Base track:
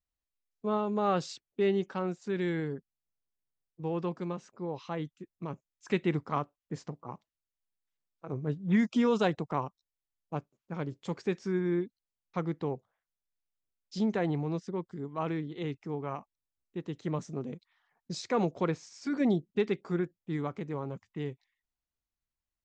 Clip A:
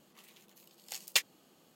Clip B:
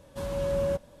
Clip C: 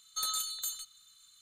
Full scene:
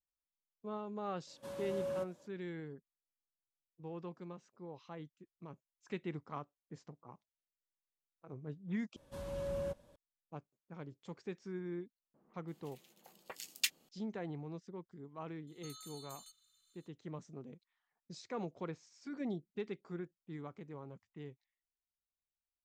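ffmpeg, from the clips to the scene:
-filter_complex "[2:a]asplit=2[a][b];[0:a]volume=-12.5dB[c];[a]highpass=180[d];[1:a]acrossover=split=1400[e][f];[f]adelay=340[g];[e][g]amix=inputs=2:normalize=0[h];[3:a]acompressor=threshold=-36dB:ratio=6:attack=3.2:release=140:knee=1:detection=peak[i];[c]asplit=2[j][k];[j]atrim=end=8.964[l];[b]atrim=end=1,asetpts=PTS-STARTPTS,volume=-11dB[m];[k]atrim=start=9.956[n];[d]atrim=end=1,asetpts=PTS-STARTPTS,volume=-10.5dB,afade=t=in:d=0.004:c=hsin,afade=t=out:st=0.996:d=0.004:c=hsin,adelay=1270[o];[h]atrim=end=1.75,asetpts=PTS-STARTPTS,volume=-5dB,afade=t=in:d=0.004:c=hsin,afade=t=out:st=1.746:d=0.004:c=hsin,adelay=12140[p];[i]atrim=end=1.41,asetpts=PTS-STARTPTS,volume=-13.5dB,afade=t=in:d=0.004:c=hsin,afade=t=out:st=1.406:d=0.004:c=hsin,adelay=15470[q];[l][m]acrossfade=d=0.004:c1=hsin:c2=hsin[r];[r][n]acrossfade=d=0.004:c1=hsin:c2=hsin[s];[s][o][p][q]amix=inputs=4:normalize=0"

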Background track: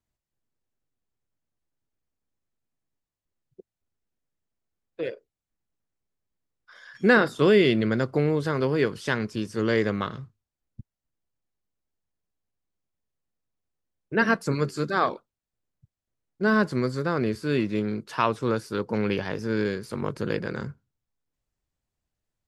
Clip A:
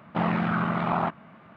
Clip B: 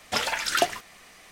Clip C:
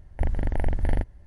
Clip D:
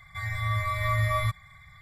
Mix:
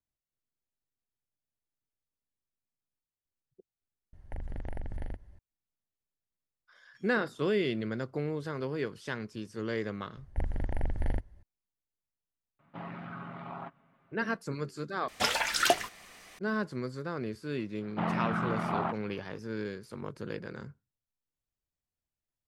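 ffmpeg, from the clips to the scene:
-filter_complex "[3:a]asplit=2[a][b];[1:a]asplit=2[c][d];[0:a]volume=-10.5dB[e];[a]acompressor=threshold=-27dB:ratio=6:attack=3.2:release=140:knee=1:detection=peak[f];[c]aecho=1:1:7.3:0.52[g];[e]asplit=3[h][i][j];[h]atrim=end=4.134[k];[f]atrim=end=1.26,asetpts=PTS-STARTPTS,volume=-5.5dB[l];[i]atrim=start=5.386:end=15.084[m];[2:a]atrim=end=1.31,asetpts=PTS-STARTPTS,volume=-2dB[n];[j]atrim=start=16.386[o];[b]atrim=end=1.26,asetpts=PTS-STARTPTS,volume=-7dB,afade=t=in:d=0.004:c=hsin,afade=t=out:st=1.256:d=0.004:c=hsin,adelay=10170[p];[g]atrim=end=1.56,asetpts=PTS-STARTPTS,volume=-17.5dB,afade=t=in:d=0.004:c=hsin,afade=t=out:st=1.556:d=0.004:c=hsin,adelay=12590[q];[d]atrim=end=1.56,asetpts=PTS-STARTPTS,volume=-6dB,afade=t=in:d=0.004:c=hsin,afade=t=out:st=1.556:d=0.004:c=hsin,adelay=17820[r];[k][l]acrossfade=d=0.004:c1=hsin:c2=hsin[s];[s][m]acrossfade=d=0.004:c1=hsin:c2=hsin[t];[t][n]acrossfade=d=0.004:c1=hsin:c2=hsin[u];[u][o]acrossfade=d=0.004:c1=hsin:c2=hsin[v];[v][p][q][r]amix=inputs=4:normalize=0"

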